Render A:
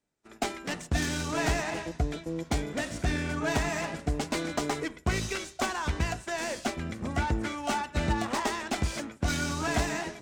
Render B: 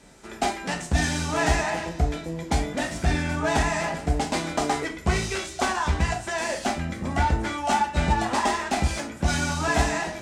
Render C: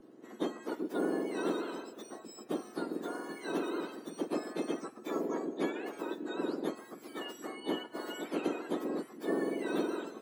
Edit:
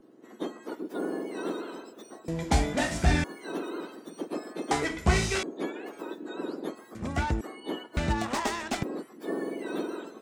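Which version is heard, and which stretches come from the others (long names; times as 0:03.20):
C
0:02.28–0:03.24: punch in from B
0:04.71–0:05.43: punch in from B
0:06.95–0:07.41: punch in from A
0:07.97–0:08.83: punch in from A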